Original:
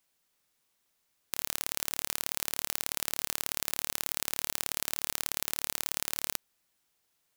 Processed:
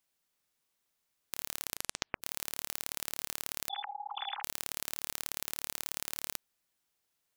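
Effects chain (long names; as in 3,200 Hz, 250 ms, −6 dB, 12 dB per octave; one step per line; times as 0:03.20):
0:01.61: tape stop 0.61 s
0:03.69–0:04.43: three sine waves on the formant tracks
level −5 dB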